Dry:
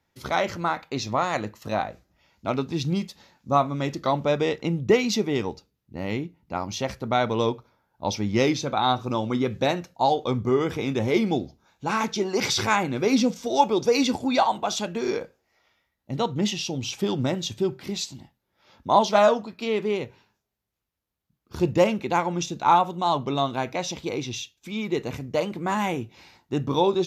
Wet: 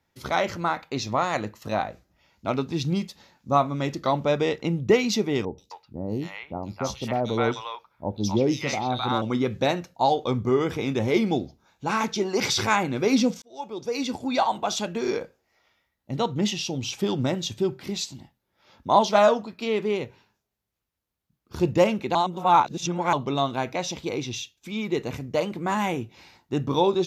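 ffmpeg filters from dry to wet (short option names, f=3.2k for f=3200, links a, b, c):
-filter_complex "[0:a]asettb=1/sr,asplit=3[a][b][c];[a]atrim=end=5.454[d];[b]atrim=start=5.45:end=9.22,asetpts=PTS-STARTPTS,afade=t=in:d=0.004:c=qsin,afade=t=out:st=3.766:d=0.004:c=qsin,acrossover=split=840|3500[e][f][g];[g]adelay=130[h];[f]adelay=260[i];[e][i][h]amix=inputs=3:normalize=0,atrim=end_sample=166257[j];[c]atrim=start=9.216[k];[d][j]acrossfade=d=0.004:c1=hsin:c2=qsin[l];[l][k]acrossfade=d=0.004:c1=qsin:c2=hsin,asplit=4[m][n][o][p];[m]atrim=end=13.42,asetpts=PTS-STARTPTS,afade=t=out:st=13.416:d=0.004:c=hsin[q];[n]atrim=start=13.42:end=22.152,asetpts=PTS-STARTPTS,afade=t=in:d=1.24[r];[o]atrim=start=22.148:end=23.132,asetpts=PTS-STARTPTS,areverse[s];[p]atrim=start=23.128[t];[q][r]concat=n=2:v=0:a=1[u];[u][s]acrossfade=d=0.004:c1=hsin:c2=hsin[v];[v][t]acrossfade=d=0.004:c1=hsin:c2=hsin"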